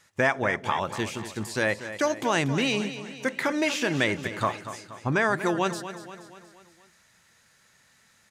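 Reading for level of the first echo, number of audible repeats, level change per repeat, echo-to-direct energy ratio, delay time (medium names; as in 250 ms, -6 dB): -12.0 dB, 5, -5.5 dB, -10.5 dB, 238 ms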